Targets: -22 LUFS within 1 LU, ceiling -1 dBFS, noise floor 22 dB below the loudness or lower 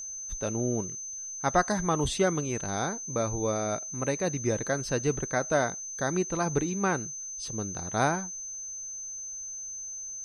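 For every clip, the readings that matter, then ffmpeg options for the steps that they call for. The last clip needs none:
steady tone 6.2 kHz; tone level -36 dBFS; loudness -30.0 LUFS; peak level -9.5 dBFS; loudness target -22.0 LUFS
-> -af "bandreject=f=6200:w=30"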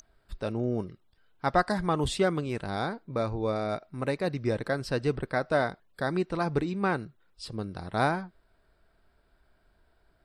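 steady tone not found; loudness -30.0 LUFS; peak level -10.0 dBFS; loudness target -22.0 LUFS
-> -af "volume=2.51"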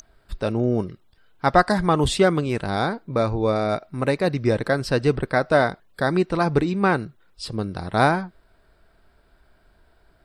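loudness -22.0 LUFS; peak level -2.0 dBFS; noise floor -60 dBFS

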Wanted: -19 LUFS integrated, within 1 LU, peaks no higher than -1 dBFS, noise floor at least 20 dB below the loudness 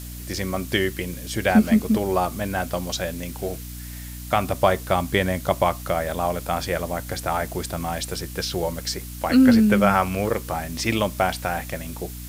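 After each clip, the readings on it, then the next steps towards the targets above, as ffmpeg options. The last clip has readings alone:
hum 60 Hz; highest harmonic 300 Hz; hum level -34 dBFS; noise floor -36 dBFS; noise floor target -43 dBFS; loudness -23.0 LUFS; peak level -3.5 dBFS; loudness target -19.0 LUFS
-> -af "bandreject=f=60:t=h:w=4,bandreject=f=120:t=h:w=4,bandreject=f=180:t=h:w=4,bandreject=f=240:t=h:w=4,bandreject=f=300:t=h:w=4"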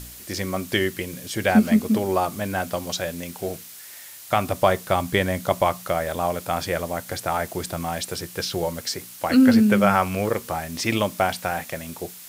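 hum not found; noise floor -42 dBFS; noise floor target -44 dBFS
-> -af "afftdn=nr=6:nf=-42"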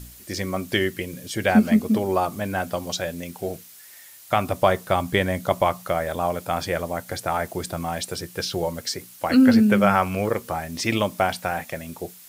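noise floor -46 dBFS; loudness -23.5 LUFS; peak level -3.5 dBFS; loudness target -19.0 LUFS
-> -af "volume=1.68,alimiter=limit=0.891:level=0:latency=1"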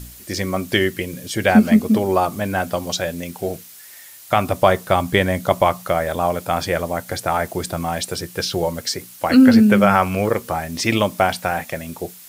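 loudness -19.0 LUFS; peak level -1.0 dBFS; noise floor -42 dBFS

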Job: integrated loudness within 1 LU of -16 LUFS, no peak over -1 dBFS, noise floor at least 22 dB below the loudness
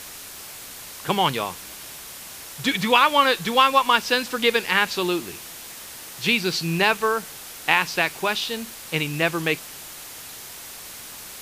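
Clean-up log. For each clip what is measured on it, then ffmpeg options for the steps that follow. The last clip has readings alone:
noise floor -39 dBFS; noise floor target -44 dBFS; loudness -21.5 LUFS; peak level -2.5 dBFS; loudness target -16.0 LUFS
-> -af "afftdn=nr=6:nf=-39"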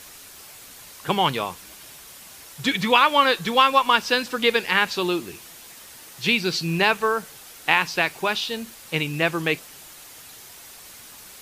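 noise floor -44 dBFS; loudness -21.5 LUFS; peak level -2.5 dBFS; loudness target -16.0 LUFS
-> -af "volume=1.88,alimiter=limit=0.891:level=0:latency=1"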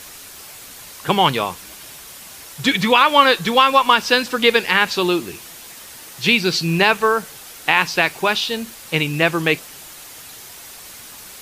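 loudness -16.5 LUFS; peak level -1.0 dBFS; noise floor -39 dBFS

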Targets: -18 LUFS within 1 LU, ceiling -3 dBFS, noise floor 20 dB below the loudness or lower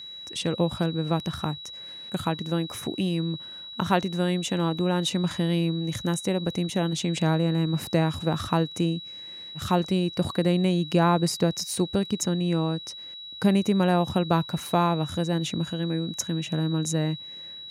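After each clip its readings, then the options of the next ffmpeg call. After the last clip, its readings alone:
steady tone 3.9 kHz; tone level -38 dBFS; loudness -26.0 LUFS; peak level -8.5 dBFS; loudness target -18.0 LUFS
-> -af "bandreject=f=3900:w=30"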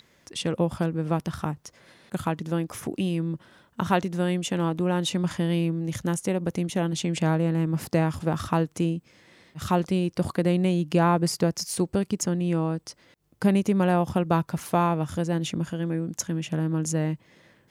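steady tone not found; loudness -26.5 LUFS; peak level -8.5 dBFS; loudness target -18.0 LUFS
-> -af "volume=2.66,alimiter=limit=0.708:level=0:latency=1"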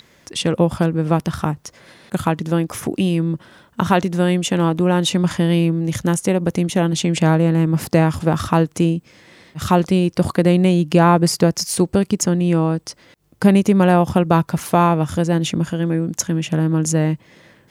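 loudness -18.0 LUFS; peak level -3.0 dBFS; noise floor -54 dBFS

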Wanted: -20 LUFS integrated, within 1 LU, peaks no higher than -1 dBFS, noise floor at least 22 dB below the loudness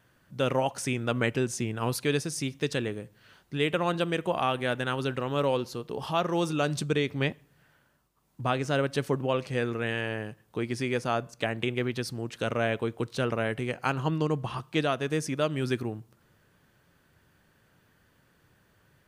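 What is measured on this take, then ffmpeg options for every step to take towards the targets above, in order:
loudness -29.5 LUFS; peak level -12.5 dBFS; loudness target -20.0 LUFS
-> -af "volume=2.99"

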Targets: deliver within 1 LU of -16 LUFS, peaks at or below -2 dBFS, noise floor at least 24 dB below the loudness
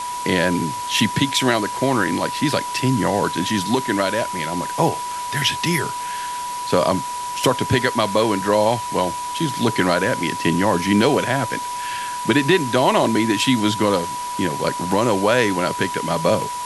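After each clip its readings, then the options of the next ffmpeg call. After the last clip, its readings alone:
steady tone 980 Hz; tone level -25 dBFS; noise floor -27 dBFS; noise floor target -44 dBFS; loudness -20.0 LUFS; peak level -2.0 dBFS; loudness target -16.0 LUFS
-> -af "bandreject=f=980:w=30"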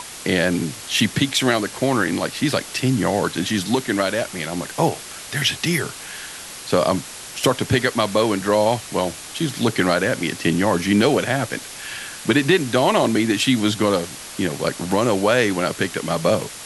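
steady tone not found; noise floor -36 dBFS; noise floor target -45 dBFS
-> -af "afftdn=nr=9:nf=-36"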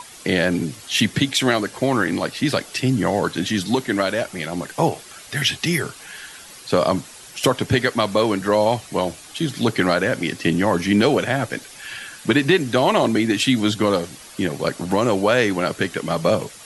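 noise floor -42 dBFS; noise floor target -45 dBFS
-> -af "afftdn=nr=6:nf=-42"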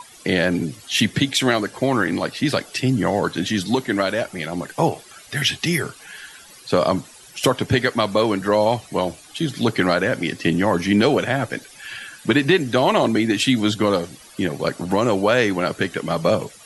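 noise floor -45 dBFS; loudness -20.5 LUFS; peak level -2.5 dBFS; loudness target -16.0 LUFS
-> -af "volume=1.68,alimiter=limit=0.794:level=0:latency=1"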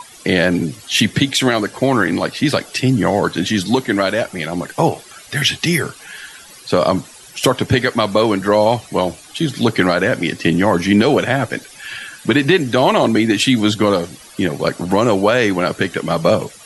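loudness -16.5 LUFS; peak level -2.0 dBFS; noise floor -41 dBFS

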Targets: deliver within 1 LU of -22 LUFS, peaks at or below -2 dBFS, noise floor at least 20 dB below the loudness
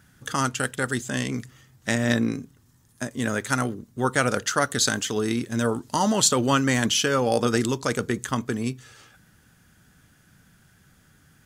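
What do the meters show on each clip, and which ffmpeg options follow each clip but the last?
loudness -24.5 LUFS; peak level -5.0 dBFS; loudness target -22.0 LUFS
-> -af "volume=1.33"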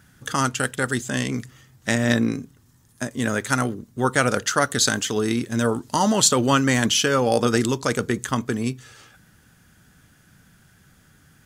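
loudness -22.0 LUFS; peak level -2.5 dBFS; noise floor -57 dBFS

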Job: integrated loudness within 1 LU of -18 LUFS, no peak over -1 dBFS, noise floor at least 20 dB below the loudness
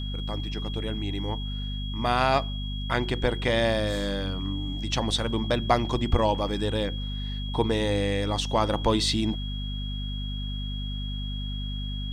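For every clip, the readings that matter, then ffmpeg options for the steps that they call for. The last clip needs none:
hum 50 Hz; highest harmonic 250 Hz; hum level -29 dBFS; steady tone 3.3 kHz; tone level -38 dBFS; loudness -28.0 LUFS; peak level -8.0 dBFS; loudness target -18.0 LUFS
-> -af "bandreject=f=50:t=h:w=6,bandreject=f=100:t=h:w=6,bandreject=f=150:t=h:w=6,bandreject=f=200:t=h:w=6,bandreject=f=250:t=h:w=6"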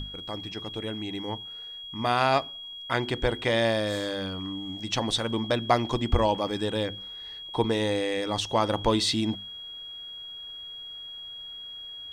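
hum not found; steady tone 3.3 kHz; tone level -38 dBFS
-> -af "bandreject=f=3300:w=30"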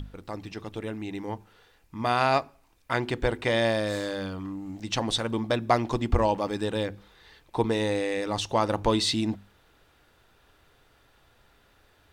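steady tone not found; loudness -28.0 LUFS; peak level -8.0 dBFS; loudness target -18.0 LUFS
-> -af "volume=3.16,alimiter=limit=0.891:level=0:latency=1"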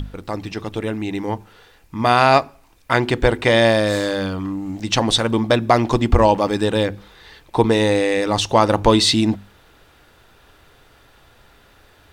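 loudness -18.0 LUFS; peak level -1.0 dBFS; noise floor -53 dBFS

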